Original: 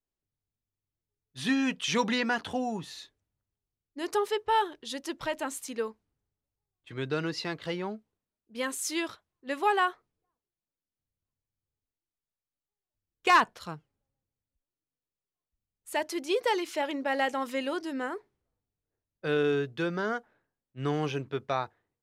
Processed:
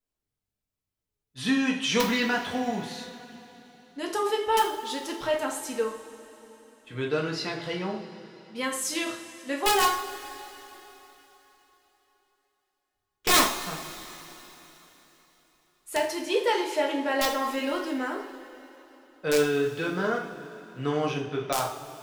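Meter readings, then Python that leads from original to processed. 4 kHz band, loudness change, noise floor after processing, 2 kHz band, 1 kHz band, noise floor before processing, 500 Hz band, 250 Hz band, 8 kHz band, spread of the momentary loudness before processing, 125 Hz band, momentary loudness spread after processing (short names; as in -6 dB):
+6.0 dB, +3.0 dB, under -85 dBFS, +2.0 dB, +1.5 dB, under -85 dBFS, +3.5 dB, +3.0 dB, +8.0 dB, 12 LU, +1.0 dB, 19 LU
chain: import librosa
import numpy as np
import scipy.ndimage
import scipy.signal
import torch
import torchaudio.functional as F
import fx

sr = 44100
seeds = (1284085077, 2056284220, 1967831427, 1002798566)

y = (np.mod(10.0 ** (16.5 / 20.0) * x + 1.0, 2.0) - 1.0) / 10.0 ** (16.5 / 20.0)
y = fx.rev_double_slope(y, sr, seeds[0], early_s=0.47, late_s=3.8, knee_db=-17, drr_db=-1.0)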